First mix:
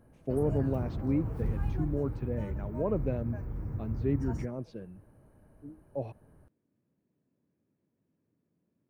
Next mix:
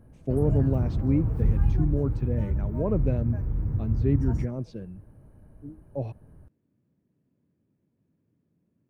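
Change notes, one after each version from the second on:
speech: add high shelf 4200 Hz +9.5 dB; master: add low shelf 230 Hz +10.5 dB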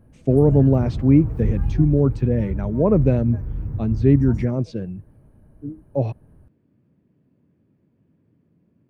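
speech +10.0 dB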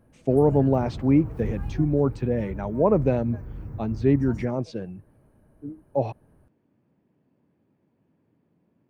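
speech: add bell 840 Hz +6.5 dB 0.53 oct; master: add low shelf 230 Hz -10.5 dB

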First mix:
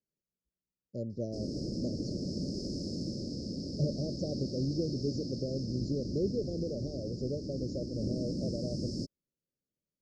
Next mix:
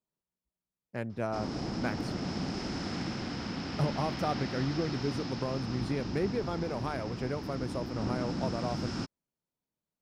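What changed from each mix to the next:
speech: remove brick-wall FIR low-pass 7200 Hz; master: remove Chebyshev band-stop 590–4500 Hz, order 5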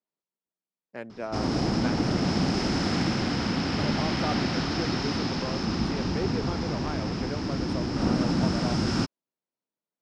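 speech: add BPF 260–6600 Hz; background +9.5 dB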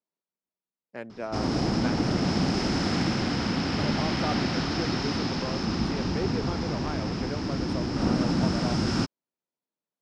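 none

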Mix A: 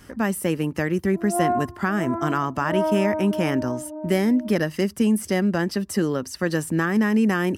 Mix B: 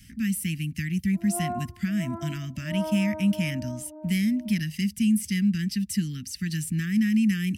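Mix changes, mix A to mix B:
speech: add Chebyshev band-stop 210–2200 Hz, order 3; background -9.5 dB

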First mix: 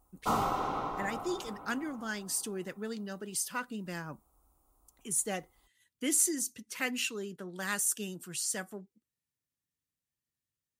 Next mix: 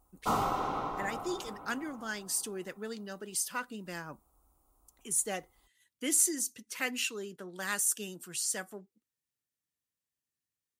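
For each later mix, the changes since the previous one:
speech: add tone controls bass -6 dB, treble +1 dB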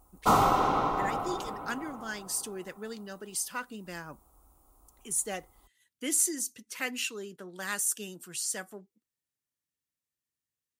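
background +7.5 dB

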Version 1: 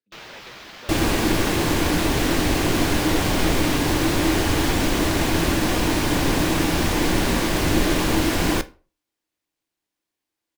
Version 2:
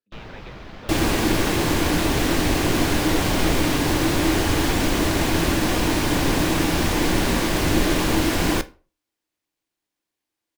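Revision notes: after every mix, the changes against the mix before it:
first sound: add tilt -4 dB/oct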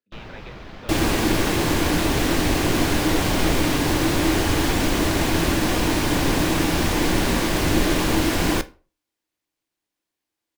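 speech: send on

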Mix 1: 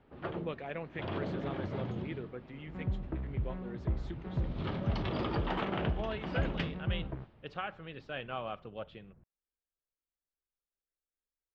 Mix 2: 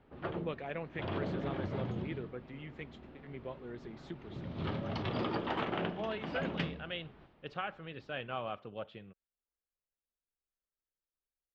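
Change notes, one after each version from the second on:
second sound: muted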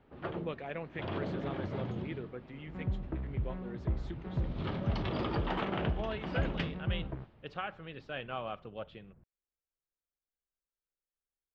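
second sound: unmuted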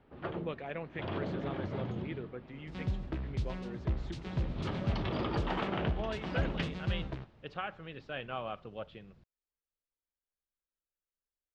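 second sound: remove Gaussian blur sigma 5 samples

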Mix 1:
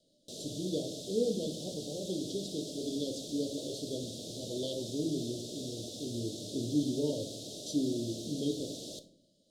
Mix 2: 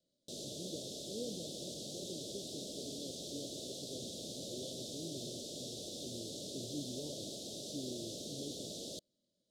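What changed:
speech -10.0 dB; reverb: off

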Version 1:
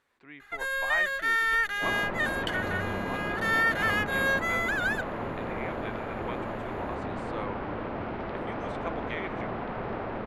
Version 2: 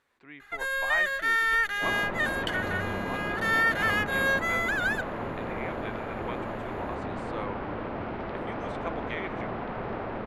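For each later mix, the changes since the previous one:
reverb: on, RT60 1.0 s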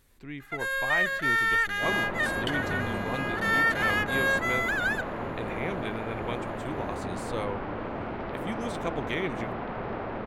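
speech: remove band-pass 1200 Hz, Q 0.8

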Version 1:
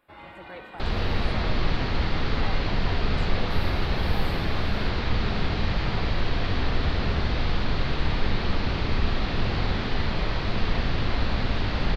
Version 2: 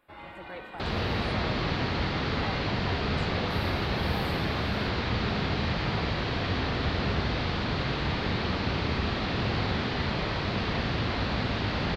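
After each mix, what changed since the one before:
second sound: add HPF 82 Hz 12 dB/oct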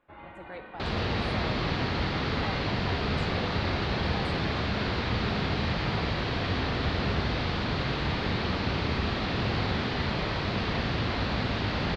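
first sound: add air absorption 380 m

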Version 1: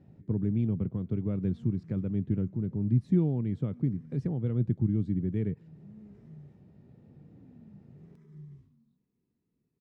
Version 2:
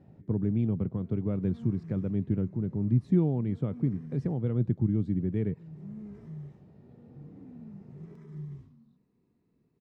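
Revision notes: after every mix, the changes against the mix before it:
background +7.0 dB; master: add bell 800 Hz +5 dB 1.9 oct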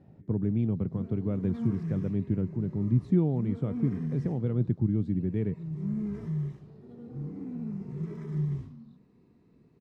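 background +10.5 dB

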